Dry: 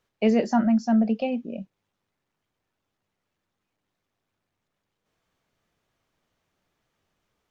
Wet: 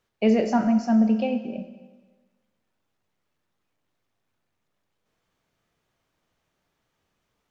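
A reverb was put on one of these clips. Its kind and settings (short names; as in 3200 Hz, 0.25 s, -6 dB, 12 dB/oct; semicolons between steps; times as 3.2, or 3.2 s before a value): Schroeder reverb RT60 1.3 s, combs from 25 ms, DRR 8 dB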